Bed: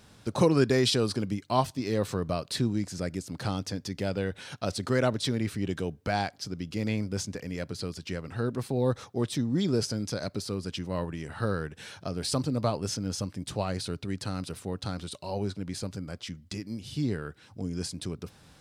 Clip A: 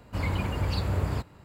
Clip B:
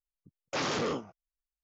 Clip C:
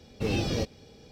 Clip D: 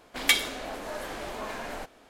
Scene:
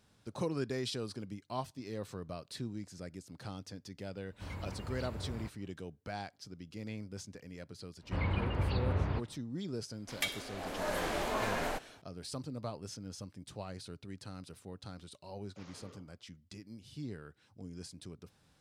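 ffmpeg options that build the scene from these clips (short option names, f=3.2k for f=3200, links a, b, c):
-filter_complex "[1:a]asplit=2[a][b];[0:a]volume=-13dB[c];[b]lowpass=f=3.8k:w=0.5412,lowpass=f=3.8k:w=1.3066[d];[4:a]dynaudnorm=f=160:g=5:m=16dB[e];[2:a]acompressor=threshold=-41dB:ratio=2:attack=0.21:release=255:knee=1:detection=peak[f];[a]atrim=end=1.44,asetpts=PTS-STARTPTS,volume=-14.5dB,afade=t=in:d=0.004:c=hsin,afade=t=out:st=1.436:d=0.004:c=hsin,adelay=4270[g];[d]atrim=end=1.44,asetpts=PTS-STARTPTS,volume=-4.5dB,afade=t=in:d=0.1,afade=t=out:st=1.34:d=0.1,adelay=7980[h];[e]atrim=end=2.09,asetpts=PTS-STARTPTS,volume=-14dB,afade=t=in:d=0.004:c=hsin,afade=t=out:st=2.086:d=0.004:c=hsin,adelay=9930[i];[f]atrim=end=1.63,asetpts=PTS-STARTPTS,volume=-18dB,afade=t=in:d=0.004:c=hsin,afade=t=out:st=1.626:d=0.004:c=hsin,adelay=15030[j];[c][g][h][i][j]amix=inputs=5:normalize=0"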